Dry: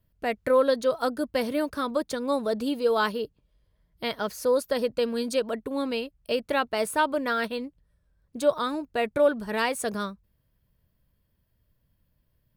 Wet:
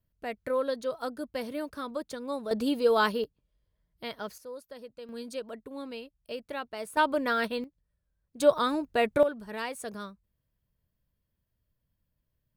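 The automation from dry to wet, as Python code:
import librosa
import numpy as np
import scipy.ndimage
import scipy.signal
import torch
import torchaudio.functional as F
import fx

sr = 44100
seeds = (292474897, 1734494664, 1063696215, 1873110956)

y = fx.gain(x, sr, db=fx.steps((0.0, -8.0), (2.51, 0.0), (3.24, -8.0), (4.38, -19.0), (5.09, -11.0), (6.97, -1.0), (7.64, -11.0), (8.4, 1.0), (9.23, -9.0)))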